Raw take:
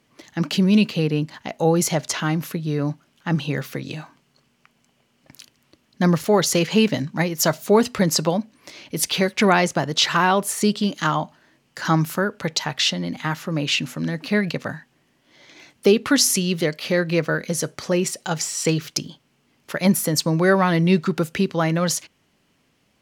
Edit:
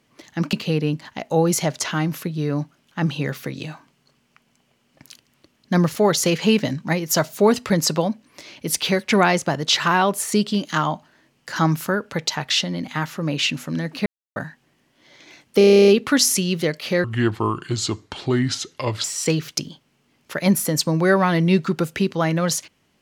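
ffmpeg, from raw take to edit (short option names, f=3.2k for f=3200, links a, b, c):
-filter_complex "[0:a]asplit=16[a][b][c][d][e][f][g][h][i][j][k][l][m][n][o][p];[a]atrim=end=0.532[q];[b]atrim=start=0.818:end=14.35,asetpts=PTS-STARTPTS,afade=t=out:st=13.528:d=0.004:c=hsin[r];[c]atrim=start=14.35:end=14.65,asetpts=PTS-STARTPTS,volume=0[s];[d]atrim=start=14.65:end=15.902,asetpts=PTS-STARTPTS,afade=t=in:d=0.004:c=hsin[t];[e]atrim=start=15.868:end=15.902[u];[f]atrim=start=15.868:end=15.902[v];[g]atrim=start=15.868:end=15.902[w];[h]atrim=start=15.868:end=15.902[x];[i]atrim=start=15.868:end=15.902[y];[j]atrim=start=15.868:end=15.902[z];[k]atrim=start=15.868:end=15.902[aa];[l]atrim=start=15.868:end=15.902[ab];[m]atrim=start=15.868:end=15.902[ac];[n]atrim=start=15.868:end=17.034[ad];[o]atrim=start=17.03:end=18.43,asetpts=PTS-STARTPTS,asetrate=30870,aresample=44100[ae];[p]atrim=start=18.426[af];[r][s][t]concat=n=3:v=0:a=1[ag];[q][ag]acrossfade=d=0.004:c1=hsin:c2=hsin[ah];[ah][u]acrossfade=d=0.004:c1=hsin:c2=hsin[ai];[ai][v]acrossfade=d=0.004:c1=hsin:c2=hsin[aj];[aj][w]acrossfade=d=0.004:c1=hsin:c2=hsin[ak];[ak][x]acrossfade=d=0.004:c1=hsin:c2=hsin[al];[al][y]acrossfade=d=0.004:c1=hsin:c2=hsin[am];[am][z]acrossfade=d=0.004:c1=hsin:c2=hsin[an];[an][aa]acrossfade=d=0.004:c1=hsin:c2=hsin[ao];[ao][ab]acrossfade=d=0.004:c1=hsin:c2=hsin[ap];[ap][ac]acrossfade=d=0.004:c1=hsin:c2=hsin[aq];[aq][ad]acrossfade=d=0.004:c1=hsin:c2=hsin[ar];[ar][ae]acrossfade=d=0.004:c1=hsin:c2=hsin[as];[as][af]acrossfade=d=0.004:c1=hsin:c2=hsin"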